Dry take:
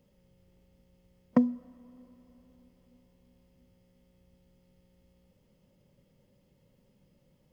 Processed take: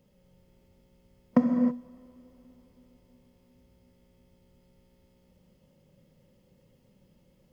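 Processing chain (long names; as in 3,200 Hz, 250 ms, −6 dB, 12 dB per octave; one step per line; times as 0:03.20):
reverb whose tail is shaped and stops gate 350 ms flat, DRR 3 dB
level +1.5 dB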